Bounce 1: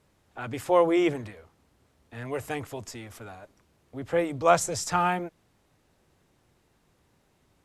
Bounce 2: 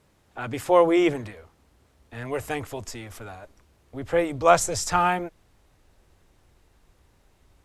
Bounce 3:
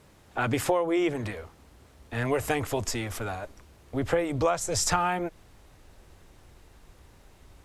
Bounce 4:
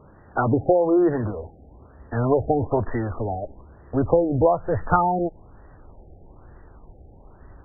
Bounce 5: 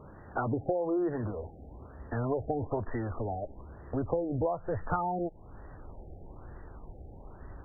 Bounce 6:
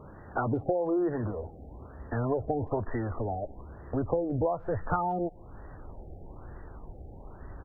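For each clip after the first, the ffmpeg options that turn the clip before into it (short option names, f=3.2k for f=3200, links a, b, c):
-af "asubboost=boost=5:cutoff=66,volume=3.5dB"
-af "acompressor=threshold=-28dB:ratio=16,volume=6.5dB"
-af "afftfilt=real='re*lt(b*sr/1024,810*pow(2000/810,0.5+0.5*sin(2*PI*1.1*pts/sr)))':imag='im*lt(b*sr/1024,810*pow(2000/810,0.5+0.5*sin(2*PI*1.1*pts/sr)))':win_size=1024:overlap=0.75,volume=7.5dB"
-af "acompressor=threshold=-37dB:ratio=2"
-filter_complex "[0:a]asplit=2[a][b];[b]adelay=170,highpass=300,lowpass=3.4k,asoftclip=type=hard:threshold=-26dB,volume=-28dB[c];[a][c]amix=inputs=2:normalize=0,volume=2dB"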